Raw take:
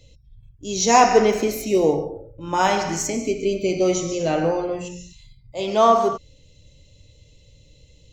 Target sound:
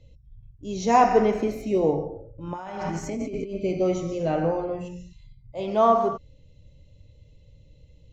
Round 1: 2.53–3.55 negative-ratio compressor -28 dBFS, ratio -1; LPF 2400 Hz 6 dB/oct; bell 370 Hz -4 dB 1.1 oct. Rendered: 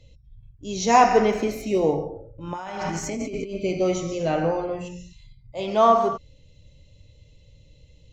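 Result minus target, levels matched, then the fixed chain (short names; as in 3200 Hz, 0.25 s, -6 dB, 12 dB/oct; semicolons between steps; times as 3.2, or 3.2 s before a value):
2000 Hz band +3.5 dB
2.53–3.55 negative-ratio compressor -28 dBFS, ratio -1; LPF 900 Hz 6 dB/oct; bell 370 Hz -4 dB 1.1 oct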